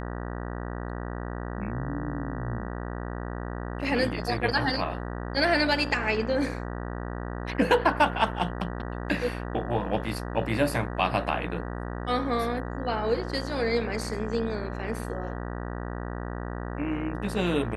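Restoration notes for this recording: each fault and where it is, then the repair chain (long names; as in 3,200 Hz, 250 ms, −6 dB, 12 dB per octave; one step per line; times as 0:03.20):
mains buzz 60 Hz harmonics 32 −34 dBFS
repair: hum removal 60 Hz, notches 32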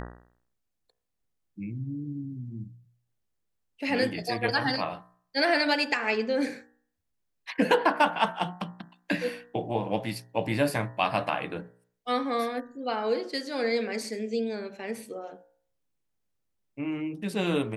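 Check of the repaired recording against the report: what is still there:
none of them is left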